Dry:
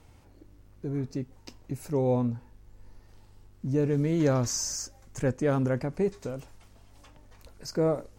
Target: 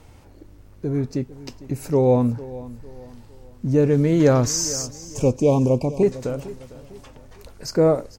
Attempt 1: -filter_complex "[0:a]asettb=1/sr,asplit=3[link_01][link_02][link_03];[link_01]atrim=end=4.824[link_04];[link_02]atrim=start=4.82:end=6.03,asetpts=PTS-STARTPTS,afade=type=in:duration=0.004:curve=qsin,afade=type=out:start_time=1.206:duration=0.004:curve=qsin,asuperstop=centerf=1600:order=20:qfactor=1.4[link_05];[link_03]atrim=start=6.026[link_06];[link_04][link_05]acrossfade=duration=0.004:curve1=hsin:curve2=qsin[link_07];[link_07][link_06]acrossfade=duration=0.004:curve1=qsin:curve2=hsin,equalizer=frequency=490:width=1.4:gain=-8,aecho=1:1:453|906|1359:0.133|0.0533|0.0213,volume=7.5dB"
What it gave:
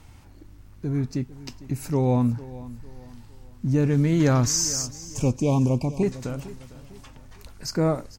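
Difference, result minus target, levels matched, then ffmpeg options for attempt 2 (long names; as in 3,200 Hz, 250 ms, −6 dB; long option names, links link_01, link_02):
500 Hz band −5.0 dB
-filter_complex "[0:a]asettb=1/sr,asplit=3[link_01][link_02][link_03];[link_01]atrim=end=4.824[link_04];[link_02]atrim=start=4.82:end=6.03,asetpts=PTS-STARTPTS,afade=type=in:duration=0.004:curve=qsin,afade=type=out:start_time=1.206:duration=0.004:curve=qsin,asuperstop=centerf=1600:order=20:qfactor=1.4[link_05];[link_03]atrim=start=6.026[link_06];[link_04][link_05]acrossfade=duration=0.004:curve1=hsin:curve2=qsin[link_07];[link_07][link_06]acrossfade=duration=0.004:curve1=qsin:curve2=hsin,equalizer=frequency=490:width=1.4:gain=2,aecho=1:1:453|906|1359:0.133|0.0533|0.0213,volume=7.5dB"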